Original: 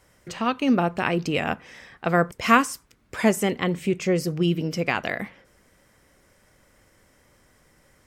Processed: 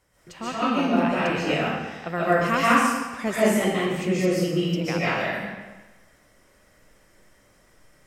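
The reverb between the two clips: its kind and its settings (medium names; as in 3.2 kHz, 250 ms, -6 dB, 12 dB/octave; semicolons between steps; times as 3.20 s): algorithmic reverb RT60 1.2 s, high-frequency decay 0.9×, pre-delay 100 ms, DRR -9.5 dB; trim -8.5 dB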